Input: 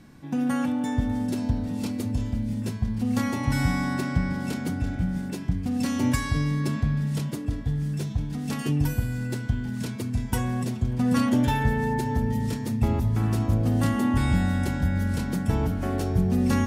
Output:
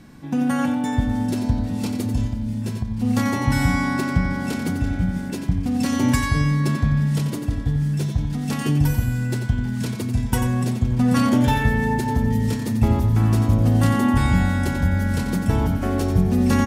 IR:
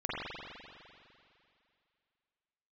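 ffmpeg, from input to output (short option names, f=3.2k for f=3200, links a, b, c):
-filter_complex "[0:a]aecho=1:1:90:0.376,asplit=3[a][b][c];[a]afade=t=out:st=2.27:d=0.02[d];[b]acompressor=threshold=-26dB:ratio=6,afade=t=in:st=2.27:d=0.02,afade=t=out:st=3.02:d=0.02[e];[c]afade=t=in:st=3.02:d=0.02[f];[d][e][f]amix=inputs=3:normalize=0,volume=4.5dB"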